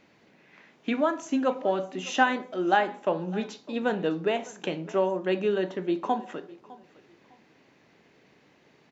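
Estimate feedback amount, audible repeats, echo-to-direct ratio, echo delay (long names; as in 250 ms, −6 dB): 26%, 2, −20.5 dB, 606 ms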